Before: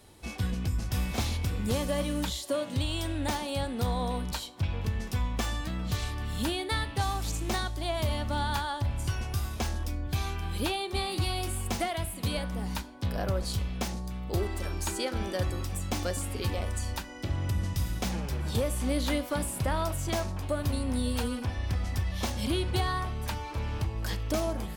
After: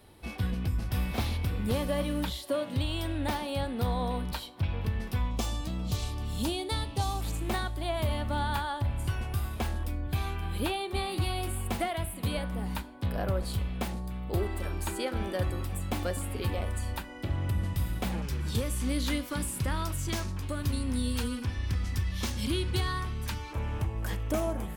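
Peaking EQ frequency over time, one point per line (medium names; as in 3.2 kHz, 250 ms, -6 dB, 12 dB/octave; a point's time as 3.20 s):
peaking EQ -11 dB 0.8 oct
6.8 kHz
from 5.31 s 1.7 kHz
from 7.21 s 5.9 kHz
from 18.22 s 680 Hz
from 23.53 s 4.6 kHz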